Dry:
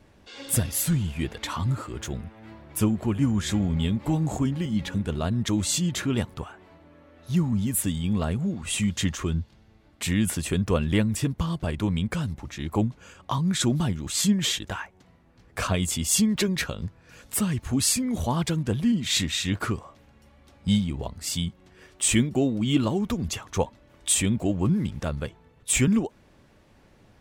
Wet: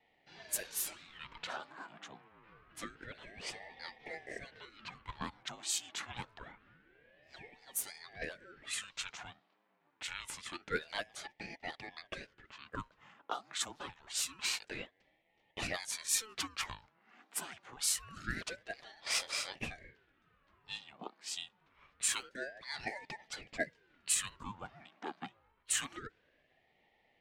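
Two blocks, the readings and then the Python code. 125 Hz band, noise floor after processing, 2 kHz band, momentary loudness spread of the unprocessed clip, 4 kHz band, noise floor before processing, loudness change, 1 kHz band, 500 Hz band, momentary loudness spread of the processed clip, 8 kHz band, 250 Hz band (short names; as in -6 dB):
-30.0 dB, -75 dBFS, -6.5 dB, 12 LU, -10.0 dB, -57 dBFS, -13.5 dB, -10.0 dB, -16.0 dB, 17 LU, -10.0 dB, -28.5 dB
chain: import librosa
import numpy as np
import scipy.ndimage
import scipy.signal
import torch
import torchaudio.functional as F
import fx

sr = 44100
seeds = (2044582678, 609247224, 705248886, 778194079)

y = scipy.signal.sosfilt(scipy.signal.butter(12, 440.0, 'highpass', fs=sr, output='sos'), x)
y = fx.env_lowpass(y, sr, base_hz=2000.0, full_db=-23.5)
y = fx.ring_lfo(y, sr, carrier_hz=790.0, swing_pct=70, hz=0.26)
y = y * 10.0 ** (-6.0 / 20.0)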